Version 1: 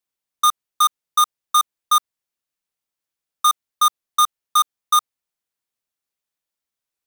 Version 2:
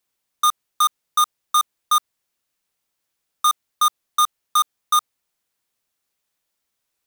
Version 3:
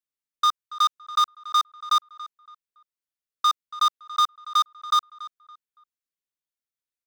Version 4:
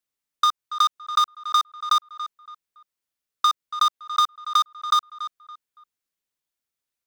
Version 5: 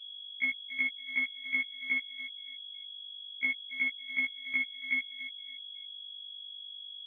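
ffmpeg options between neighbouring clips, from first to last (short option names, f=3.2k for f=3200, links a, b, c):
-af "alimiter=limit=-23dB:level=0:latency=1:release=18,volume=8.5dB"
-filter_complex "[0:a]afwtdn=0.0355,equalizer=f=780:t=o:w=0.38:g=-12.5,asplit=2[a][b];[b]adelay=282,lowpass=f=2.9k:p=1,volume=-16dB,asplit=2[c][d];[d]adelay=282,lowpass=f=2.9k:p=1,volume=0.33,asplit=2[e][f];[f]adelay=282,lowpass=f=2.9k:p=1,volume=0.33[g];[a][c][e][g]amix=inputs=4:normalize=0,volume=-1.5dB"
-af "acompressor=threshold=-23dB:ratio=4,volume=6dB"
-af "aeval=exprs='val(0)+0.0126*(sin(2*PI*50*n/s)+sin(2*PI*2*50*n/s)/2+sin(2*PI*3*50*n/s)/3+sin(2*PI*4*50*n/s)/4+sin(2*PI*5*50*n/s)/5)':c=same,lowpass=f=2.9k:t=q:w=0.5098,lowpass=f=2.9k:t=q:w=0.6013,lowpass=f=2.9k:t=q:w=0.9,lowpass=f=2.9k:t=q:w=2.563,afreqshift=-3400,afftfilt=real='re*1.73*eq(mod(b,3),0)':imag='im*1.73*eq(mod(b,3),0)':win_size=2048:overlap=0.75,volume=-6dB"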